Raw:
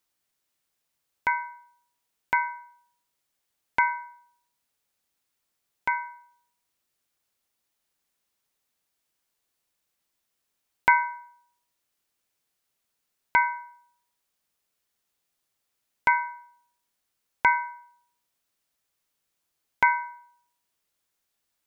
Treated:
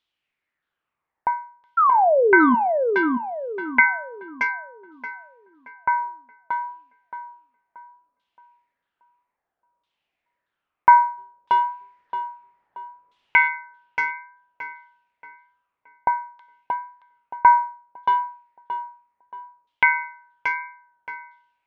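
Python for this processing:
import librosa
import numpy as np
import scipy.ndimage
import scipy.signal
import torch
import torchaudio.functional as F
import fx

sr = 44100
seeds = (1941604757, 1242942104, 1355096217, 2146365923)

y = fx.law_mismatch(x, sr, coded='mu', at=(11.17, 13.47), fade=0.02)
y = fx.dynamic_eq(y, sr, hz=2700.0, q=1.6, threshold_db=-39.0, ratio=4.0, max_db=6)
y = fx.spec_paint(y, sr, seeds[0], shape='fall', start_s=1.77, length_s=0.78, low_hz=230.0, high_hz=1400.0, level_db=-16.0)
y = fx.filter_lfo_lowpass(y, sr, shape='saw_down', hz=0.61, low_hz=550.0, high_hz=3500.0, q=4.0)
y = fx.comb_fb(y, sr, f0_hz=77.0, decay_s=0.26, harmonics='all', damping=0.0, mix_pct=40)
y = fx.echo_tape(y, sr, ms=626, feedback_pct=40, wet_db=-3.0, lp_hz=1800.0, drive_db=9.0, wow_cents=33)
y = F.gain(torch.from_numpy(y), 1.5).numpy()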